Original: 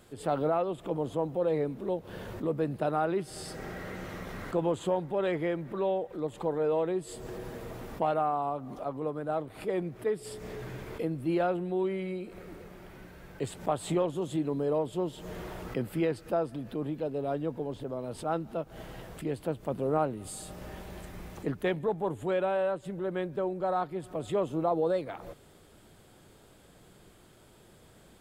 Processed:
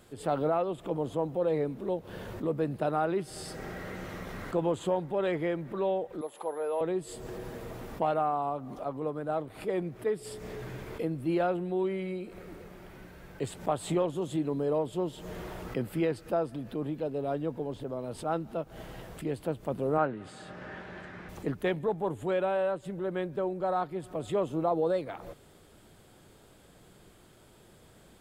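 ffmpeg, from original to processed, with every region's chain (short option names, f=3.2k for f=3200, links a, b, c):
-filter_complex "[0:a]asettb=1/sr,asplit=3[a][b][c];[a]atrim=end=6.214[d];[b]atrim=start=6.21:end=6.81,asetpts=PTS-STARTPTS,afade=t=in:d=0.004:c=qsin,afade=t=out:st=0.596:d=0.004:c=qsin,highpass=670,tiltshelf=f=1.1k:g=4,aeval=exprs='val(0)+0.00141*sin(2*PI*11000*n/s)':c=same[e];[c]atrim=start=6.806[f];[d][e]acrossfade=d=0.004:c1=hsin:c2=qsin[g];[g][f]acrossfade=d=0.004:c1=qsin:c2=hsin,asettb=1/sr,asplit=3[h][i][j];[h]atrim=end=19.984[k];[i]atrim=start=19.98:end=21.29,asetpts=PTS-STARTPTS,afade=t=in:d=0.004:c=qsin,afade=t=out:st=1.306:d=0.004:c=qsin,highpass=120,lowpass=3.7k,equalizer=f=1.6k:t=o:w=0.61:g=10.5[l];[j]atrim=start=21.286[m];[k][l]acrossfade=d=0.004:c1=hsin:c2=qsin[n];[n][m]acrossfade=d=0.004:c1=qsin:c2=hsin"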